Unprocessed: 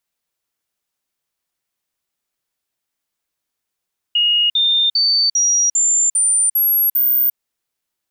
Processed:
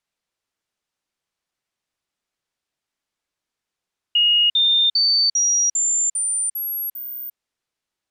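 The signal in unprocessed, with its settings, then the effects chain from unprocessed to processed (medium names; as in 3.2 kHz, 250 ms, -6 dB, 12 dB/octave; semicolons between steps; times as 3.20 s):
stepped sine 2.87 kHz up, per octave 3, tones 8, 0.35 s, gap 0.05 s -12 dBFS
distance through air 52 m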